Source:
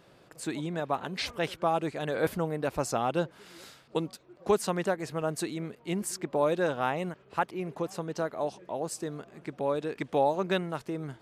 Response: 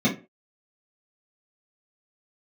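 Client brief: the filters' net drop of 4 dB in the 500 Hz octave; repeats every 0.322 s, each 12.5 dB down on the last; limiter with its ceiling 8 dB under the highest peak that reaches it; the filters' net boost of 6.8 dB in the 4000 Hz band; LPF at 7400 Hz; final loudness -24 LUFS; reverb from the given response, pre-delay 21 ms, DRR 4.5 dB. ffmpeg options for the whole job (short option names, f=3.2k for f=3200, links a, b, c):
-filter_complex "[0:a]lowpass=7.4k,equalizer=f=500:t=o:g=-5,equalizer=f=4k:t=o:g=8.5,alimiter=limit=-22dB:level=0:latency=1,aecho=1:1:322|644|966:0.237|0.0569|0.0137,asplit=2[a][b];[1:a]atrim=start_sample=2205,adelay=21[c];[b][c]afir=irnorm=-1:irlink=0,volume=-18dB[d];[a][d]amix=inputs=2:normalize=0,volume=6.5dB"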